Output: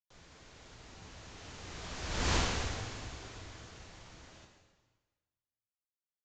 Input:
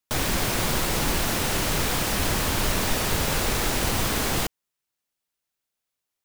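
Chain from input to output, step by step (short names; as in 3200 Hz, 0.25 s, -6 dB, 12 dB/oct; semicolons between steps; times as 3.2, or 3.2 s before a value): Doppler pass-by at 2.33, 17 m/s, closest 1.5 m; frequency shift -120 Hz; de-hum 103.3 Hz, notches 36; downsampling 16000 Hz; plate-style reverb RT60 1.4 s, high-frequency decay 0.95×, DRR 2 dB; gain -4.5 dB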